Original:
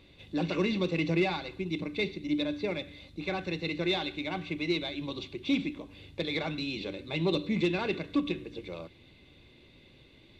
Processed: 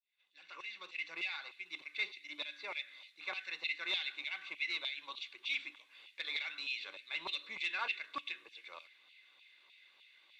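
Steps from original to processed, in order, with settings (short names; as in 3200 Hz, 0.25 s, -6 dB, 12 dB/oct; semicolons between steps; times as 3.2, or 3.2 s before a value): opening faded in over 1.86 s; LFO high-pass saw down 3.3 Hz 970–2800 Hz; gain -5.5 dB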